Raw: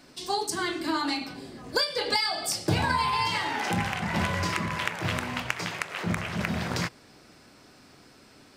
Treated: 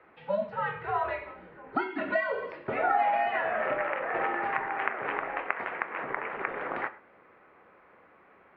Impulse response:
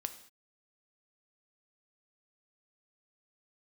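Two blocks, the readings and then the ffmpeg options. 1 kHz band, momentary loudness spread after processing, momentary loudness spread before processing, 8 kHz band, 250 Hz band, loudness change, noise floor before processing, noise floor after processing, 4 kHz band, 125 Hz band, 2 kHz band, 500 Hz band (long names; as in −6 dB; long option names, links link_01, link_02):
+0.5 dB, 8 LU, 6 LU, below −40 dB, −9.5 dB, −2.5 dB, −55 dBFS, −59 dBFS, −21.5 dB, −18.5 dB, −1.0 dB, +2.5 dB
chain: -filter_complex "[0:a]highpass=frequency=560:width_type=q:width=0.5412,highpass=frequency=560:width_type=q:width=1.307,lowpass=frequency=2500:width_type=q:width=0.5176,lowpass=frequency=2500:width_type=q:width=0.7071,lowpass=frequency=2500:width_type=q:width=1.932,afreqshift=-210,asplit=2[link_01][link_02];[link_02]aemphasis=mode=reproduction:type=75kf[link_03];[1:a]atrim=start_sample=2205,afade=type=out:start_time=0.18:duration=0.01,atrim=end_sample=8379[link_04];[link_03][link_04]afir=irnorm=-1:irlink=0,volume=7dB[link_05];[link_01][link_05]amix=inputs=2:normalize=0,volume=-7dB"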